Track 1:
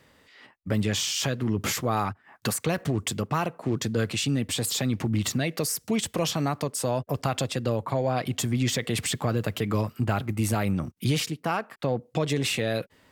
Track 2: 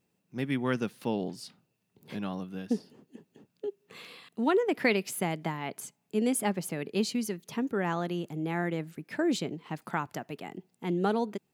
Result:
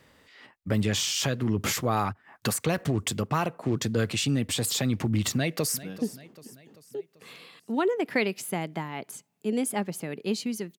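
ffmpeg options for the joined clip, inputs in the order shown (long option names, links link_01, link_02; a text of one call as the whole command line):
ffmpeg -i cue0.wav -i cue1.wav -filter_complex "[0:a]apad=whole_dur=10.78,atrim=end=10.78,atrim=end=5.832[link_01];[1:a]atrim=start=2.518:end=7.47[link_02];[link_01][link_02]acrossfade=duration=0.004:curve1=hsin:curve2=hsin,asplit=2[link_03][link_04];[link_04]afade=type=in:start_time=5.32:duration=0.01,afade=type=out:start_time=5.83:duration=0.01,aecho=0:1:390|780|1170|1560|1950:0.141254|0.0776896|0.0427293|0.0235011|0.0129256[link_05];[link_03][link_05]amix=inputs=2:normalize=0" out.wav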